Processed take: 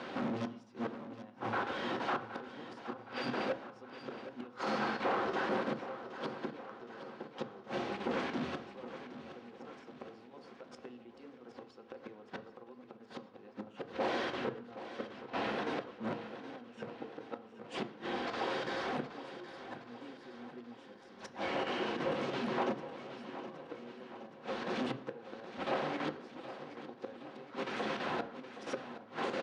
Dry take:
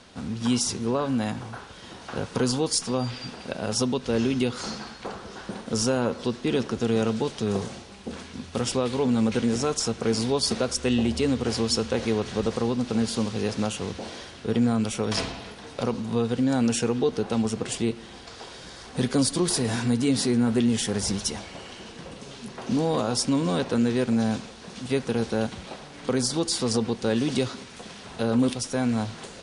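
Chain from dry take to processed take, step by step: dynamic EQ 990 Hz, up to +5 dB, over -39 dBFS, Q 0.72; in parallel at -3 dB: compressor 6:1, threshold -34 dBFS, peak gain reduction 16 dB; on the sum: chopper 3 Hz, depth 65%, duty 90%; flipped gate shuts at -15 dBFS, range -35 dB; overloaded stage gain 34.5 dB; BPF 250–2300 Hz; feedback echo 0.769 s, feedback 57%, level -12.5 dB; on a send at -7.5 dB: reverb RT60 0.65 s, pre-delay 3 ms; on the sum: gain +4.5 dB

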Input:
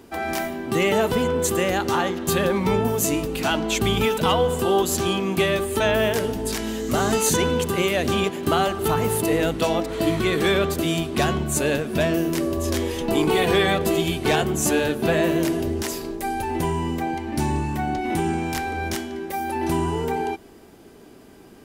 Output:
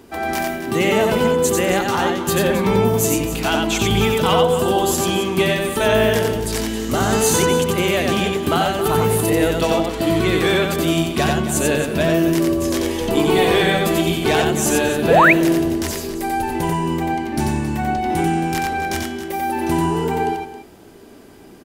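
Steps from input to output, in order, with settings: loudspeakers at several distances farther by 31 m -3 dB, 93 m -12 dB; painted sound rise, 15.1–15.33, 410–2700 Hz -13 dBFS; gain +2 dB

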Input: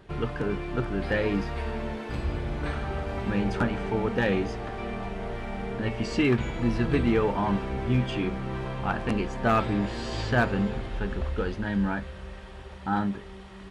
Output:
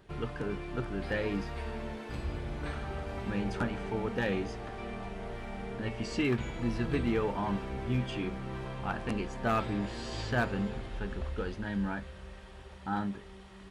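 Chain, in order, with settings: high shelf 5700 Hz +6 dB; gain -6.5 dB

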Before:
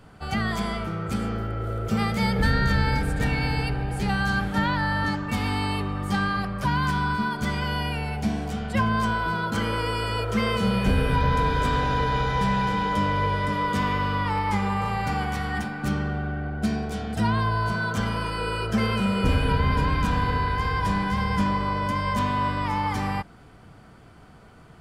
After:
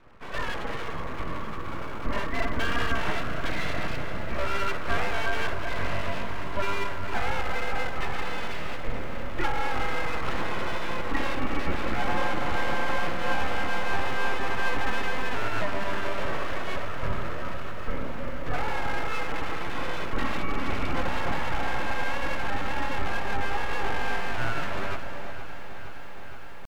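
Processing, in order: on a send: darkening echo 0.33 s, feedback 35%, low-pass 1000 Hz, level -5.5 dB; on the sum: tempo 0.93×; mistuned SSB -200 Hz 150–2600 Hz; full-wave rectifier; notch 780 Hz, Q 15; lo-fi delay 0.466 s, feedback 80%, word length 9-bit, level -14 dB

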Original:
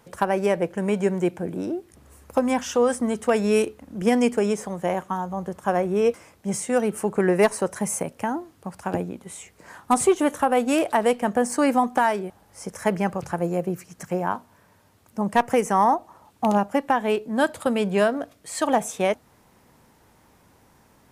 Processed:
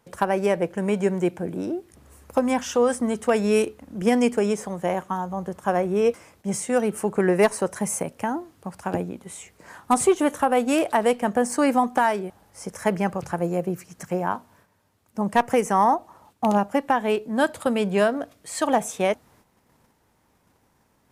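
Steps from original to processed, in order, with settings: gate -55 dBFS, range -8 dB

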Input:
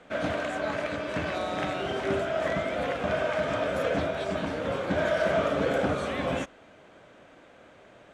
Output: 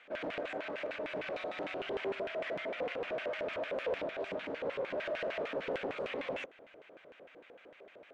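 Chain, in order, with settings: in parallel at -0.5 dB: compressor, threshold -36 dBFS, peak gain reduction 14 dB; on the sum: hard clip -25.5 dBFS, distortion -10 dB; LFO band-pass square 6.6 Hz 460–2400 Hz; Doppler distortion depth 0.26 ms; gain -1.5 dB

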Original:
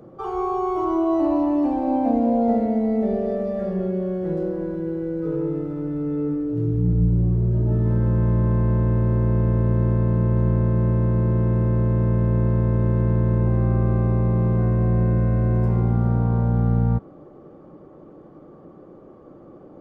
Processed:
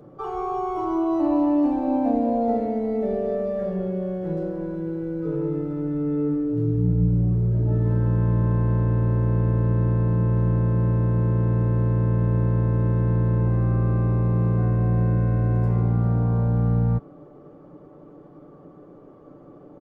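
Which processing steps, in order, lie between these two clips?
comb 6.9 ms, depth 38%; gain -2 dB

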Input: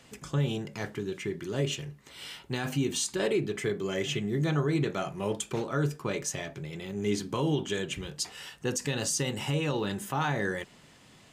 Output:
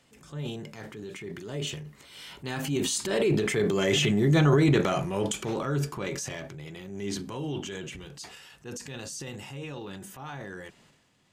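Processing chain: Doppler pass-by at 4.18, 10 m/s, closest 7.6 m; transient shaper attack -5 dB, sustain +8 dB; gain +7.5 dB

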